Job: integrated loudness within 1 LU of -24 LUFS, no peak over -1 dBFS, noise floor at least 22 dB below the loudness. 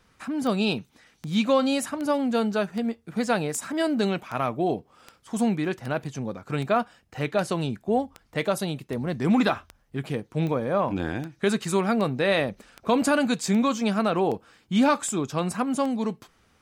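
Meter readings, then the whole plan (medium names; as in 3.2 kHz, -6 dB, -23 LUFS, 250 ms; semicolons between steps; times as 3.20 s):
clicks found 21; loudness -26.0 LUFS; peak level -9.5 dBFS; loudness target -24.0 LUFS
-> de-click; trim +2 dB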